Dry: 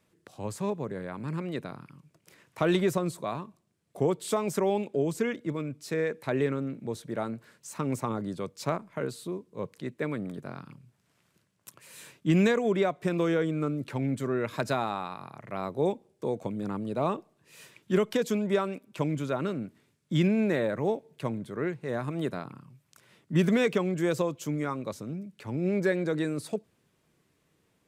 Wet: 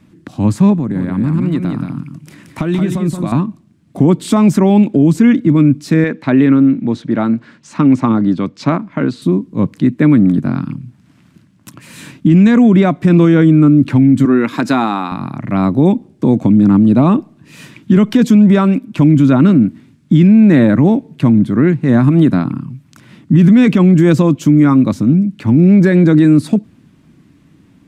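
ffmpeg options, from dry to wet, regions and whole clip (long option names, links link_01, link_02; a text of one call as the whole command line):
ffmpeg -i in.wav -filter_complex "[0:a]asettb=1/sr,asplit=3[link_01][link_02][link_03];[link_01]atrim=end=0.774[link_04];[link_02]atrim=start=0.77:end=3.32,asetpts=PTS-STARTPTS,afade=type=in:duration=0.004:curve=qsin,afade=type=out:start_time=2.546:duration=0.004:curve=qsin,equalizer=frequency=10000:width_type=o:width=0.94:gain=5.5,acompressor=threshold=-38dB:ratio=3:attack=3.2:release=140:knee=1:detection=peak,aecho=1:1:176:0.531,atrim=end_sample=112455[link_05];[link_03]atrim=start=3.316[link_06];[link_04][link_05]acrossfade=duration=0.004:curve1=hsin:curve2=qsin[link_07];[link_07][link_06]acrossfade=duration=0.004:curve1=qsin:curve2=hsin,asettb=1/sr,asplit=3[link_08][link_09][link_10];[link_08]atrim=end=6.044[link_11];[link_09]atrim=start=6.04:end=9.22,asetpts=PTS-STARTPTS,afade=type=in:duration=0.004:curve=qsin,afade=type=out:start_time=3.176:duration=0.004:curve=qsin,lowpass=5000,lowshelf=frequency=190:gain=-11.5[link_12];[link_10]atrim=start=9.216[link_13];[link_11][link_12]acrossfade=duration=0.004:curve1=hsin:curve2=qsin[link_14];[link_14][link_13]acrossfade=duration=0.004:curve1=qsin:curve2=hsin,asettb=1/sr,asplit=3[link_15][link_16][link_17];[link_15]atrim=end=14.254[link_18];[link_16]atrim=start=14.25:end=15.12,asetpts=PTS-STARTPTS,afade=type=in:duration=0.004:curve=qsin,afade=type=out:start_time=0.866:duration=0.004:curve=qsin,highpass=300,bandreject=frequency=610:width=7.5[link_19];[link_17]atrim=start=15.116[link_20];[link_18][link_19]acrossfade=duration=0.004:curve1=hsin:curve2=qsin[link_21];[link_21][link_20]acrossfade=duration=0.004:curve1=qsin:curve2=hsin,lowpass=frequency=4000:poles=1,lowshelf=frequency=350:width_type=q:width=3:gain=7.5,alimiter=level_in=17dB:limit=-1dB:release=50:level=0:latency=1,volume=-1dB" out.wav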